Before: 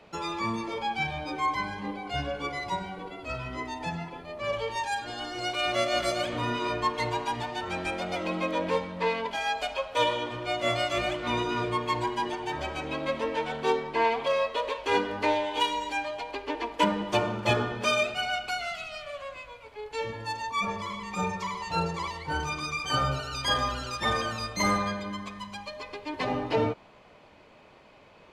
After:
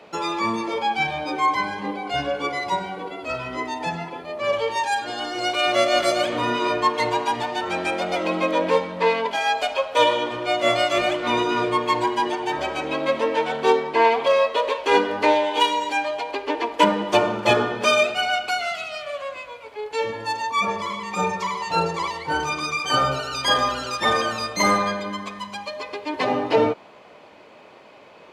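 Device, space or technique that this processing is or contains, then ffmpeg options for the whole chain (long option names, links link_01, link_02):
filter by subtraction: -filter_complex "[0:a]asplit=2[link_01][link_02];[link_02]lowpass=410,volume=-1[link_03];[link_01][link_03]amix=inputs=2:normalize=0,volume=6.5dB"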